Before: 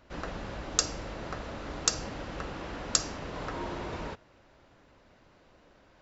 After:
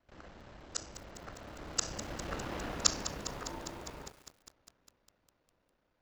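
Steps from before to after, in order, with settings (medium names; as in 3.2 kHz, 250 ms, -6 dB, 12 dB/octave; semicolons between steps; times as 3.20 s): time reversed locally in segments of 30 ms; Doppler pass-by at 2.56 s, 15 m/s, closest 7 m; bit-crushed delay 202 ms, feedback 80%, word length 8-bit, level -12 dB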